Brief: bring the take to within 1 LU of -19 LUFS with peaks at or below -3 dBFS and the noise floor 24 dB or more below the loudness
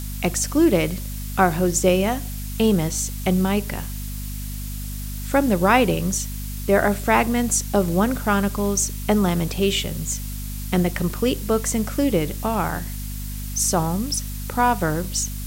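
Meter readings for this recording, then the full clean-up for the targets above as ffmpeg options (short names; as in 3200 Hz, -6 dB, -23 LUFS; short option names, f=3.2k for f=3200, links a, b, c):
hum 50 Hz; harmonics up to 250 Hz; hum level -28 dBFS; noise floor -30 dBFS; noise floor target -46 dBFS; loudness -22.0 LUFS; peak -3.0 dBFS; loudness target -19.0 LUFS
-> -af "bandreject=f=50:t=h:w=6,bandreject=f=100:t=h:w=6,bandreject=f=150:t=h:w=6,bandreject=f=200:t=h:w=6,bandreject=f=250:t=h:w=6"
-af "afftdn=nr=16:nf=-30"
-af "volume=3dB,alimiter=limit=-3dB:level=0:latency=1"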